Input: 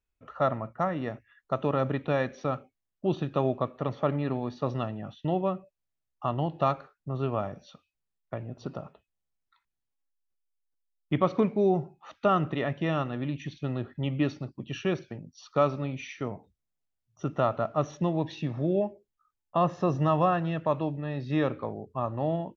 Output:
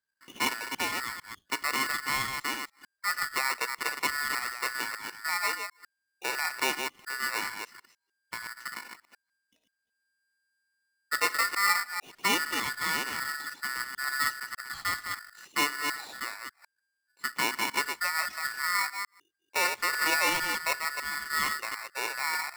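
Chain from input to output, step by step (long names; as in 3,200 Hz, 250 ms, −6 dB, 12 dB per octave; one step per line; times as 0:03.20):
delay that plays each chunk backwards 150 ms, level −5.5 dB
ring modulator with a square carrier 1,600 Hz
level −3.5 dB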